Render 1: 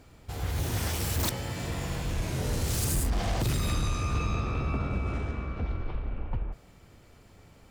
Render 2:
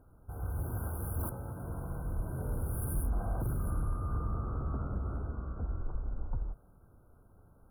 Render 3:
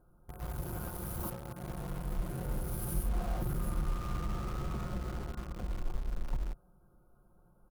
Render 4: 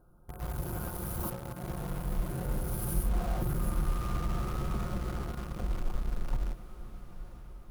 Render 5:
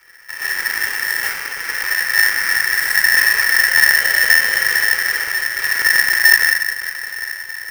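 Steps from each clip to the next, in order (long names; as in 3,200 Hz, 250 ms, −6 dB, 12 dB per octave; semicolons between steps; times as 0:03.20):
brick-wall band-stop 1,600–9,300 Hz; low-shelf EQ 69 Hz +7 dB; level −8 dB
comb filter 5.6 ms, depth 69%; in parallel at −6 dB: bit reduction 6 bits; on the sum: level −5 dB
feedback delay with all-pass diffusion 954 ms, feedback 50%, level −13.5 dB; level +3 dB
sub-harmonics by changed cycles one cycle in 2, inverted; rectangular room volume 3,500 cubic metres, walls furnished, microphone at 4.4 metres; ring modulator with a square carrier 1,800 Hz; level +7 dB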